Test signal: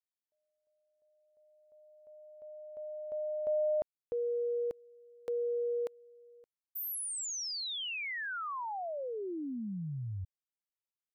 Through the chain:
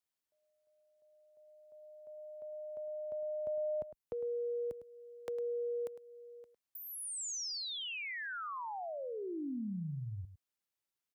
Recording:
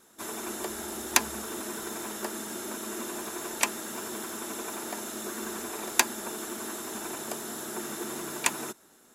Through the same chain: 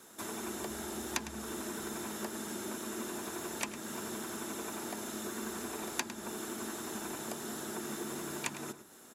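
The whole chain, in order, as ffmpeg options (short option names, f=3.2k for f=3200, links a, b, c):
-filter_complex "[0:a]highpass=45,acrossover=split=210|7900[a][b][c];[a]acompressor=threshold=-49dB:ratio=2.5[d];[b]acompressor=threshold=-50dB:ratio=2[e];[c]acompressor=threshold=-52dB:ratio=8[f];[d][e][f]amix=inputs=3:normalize=0,asplit=2[g][h];[h]adelay=105,volume=-12dB,highshelf=f=4k:g=-2.36[i];[g][i]amix=inputs=2:normalize=0,volume=3.5dB"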